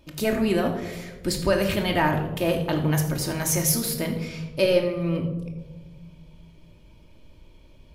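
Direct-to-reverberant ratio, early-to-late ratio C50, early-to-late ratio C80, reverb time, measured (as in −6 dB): 2.0 dB, 7.5 dB, 10.0 dB, 1.3 s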